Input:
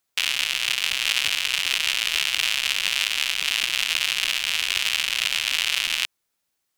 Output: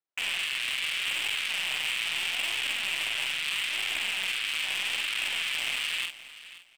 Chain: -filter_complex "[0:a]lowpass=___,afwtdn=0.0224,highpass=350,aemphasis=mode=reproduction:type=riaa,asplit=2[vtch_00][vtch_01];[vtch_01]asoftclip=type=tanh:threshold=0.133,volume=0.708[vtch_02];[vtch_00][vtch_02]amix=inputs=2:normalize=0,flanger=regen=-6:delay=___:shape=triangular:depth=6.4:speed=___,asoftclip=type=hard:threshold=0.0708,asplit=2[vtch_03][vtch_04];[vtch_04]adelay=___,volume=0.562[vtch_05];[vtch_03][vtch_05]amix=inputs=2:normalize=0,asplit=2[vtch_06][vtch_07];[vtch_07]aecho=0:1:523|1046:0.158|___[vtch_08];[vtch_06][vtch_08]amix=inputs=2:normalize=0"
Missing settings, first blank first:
8400, 2.1, 0.78, 47, 0.0365